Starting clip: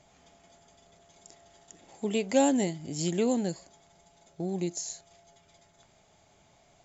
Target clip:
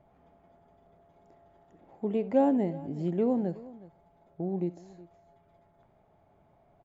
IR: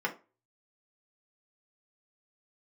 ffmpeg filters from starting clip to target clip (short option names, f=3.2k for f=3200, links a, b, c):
-filter_complex "[0:a]lowpass=1.1k,asplit=2[a][b];[b]aecho=0:1:68|367:0.126|0.106[c];[a][c]amix=inputs=2:normalize=0"